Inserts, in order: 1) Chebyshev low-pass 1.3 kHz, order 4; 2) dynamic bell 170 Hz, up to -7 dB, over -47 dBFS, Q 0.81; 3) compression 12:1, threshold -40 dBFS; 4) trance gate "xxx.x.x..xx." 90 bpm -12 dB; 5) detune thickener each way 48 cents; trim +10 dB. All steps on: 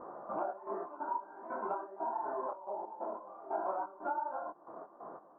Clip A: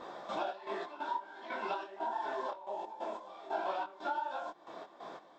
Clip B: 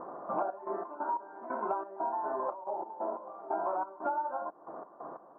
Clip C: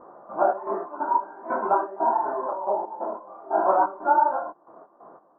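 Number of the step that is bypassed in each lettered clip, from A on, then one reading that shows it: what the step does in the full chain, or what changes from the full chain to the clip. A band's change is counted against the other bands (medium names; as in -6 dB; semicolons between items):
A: 1, 2 kHz band +8.0 dB; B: 5, loudness change +3.5 LU; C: 3, mean gain reduction 9.5 dB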